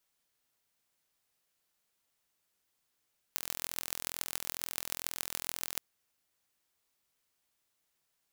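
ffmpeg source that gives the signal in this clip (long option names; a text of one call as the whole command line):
ffmpeg -f lavfi -i "aevalsrc='0.562*eq(mod(n,1045),0)*(0.5+0.5*eq(mod(n,6270),0))':duration=2.42:sample_rate=44100" out.wav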